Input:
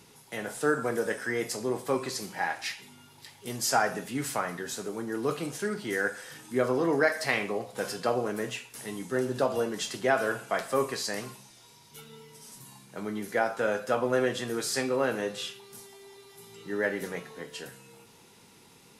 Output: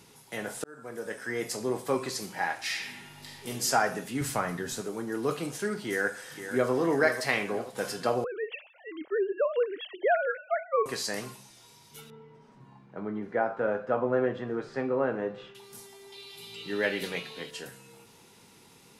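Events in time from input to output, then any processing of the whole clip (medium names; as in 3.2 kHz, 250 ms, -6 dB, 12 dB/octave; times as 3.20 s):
0.64–1.57 s: fade in
2.64–3.48 s: reverb throw, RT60 1.3 s, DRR -3 dB
4.21–4.81 s: bass shelf 160 Hz +12 dB
5.88–6.71 s: echo throw 490 ms, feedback 55%, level -10 dB
8.24–10.86 s: formants replaced by sine waves
12.10–15.55 s: low-pass 1.4 kHz
16.12–17.51 s: high-order bell 3.3 kHz +12.5 dB 1.2 oct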